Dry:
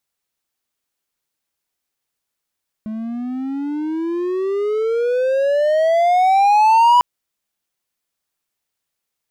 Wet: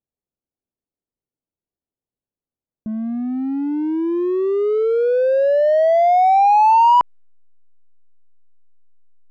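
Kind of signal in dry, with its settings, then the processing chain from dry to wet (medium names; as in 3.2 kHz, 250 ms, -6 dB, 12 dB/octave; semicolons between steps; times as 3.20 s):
gliding synth tone triangle, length 4.15 s, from 214 Hz, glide +26.5 st, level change +15.5 dB, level -6 dB
low-pass 1.1 kHz 6 dB/octave; level-controlled noise filter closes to 510 Hz, open at -18 dBFS; in parallel at -10 dB: hysteresis with a dead band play -30 dBFS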